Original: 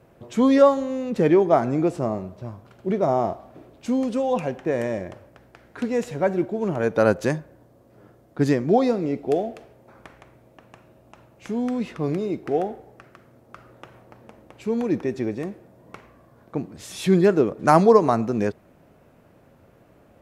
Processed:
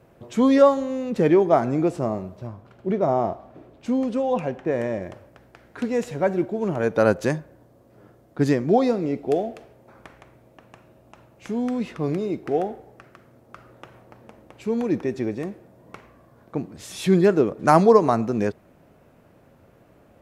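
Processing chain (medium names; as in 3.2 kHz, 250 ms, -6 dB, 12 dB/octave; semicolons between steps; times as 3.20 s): 2.47–5.02 s: treble shelf 4.6 kHz -8.5 dB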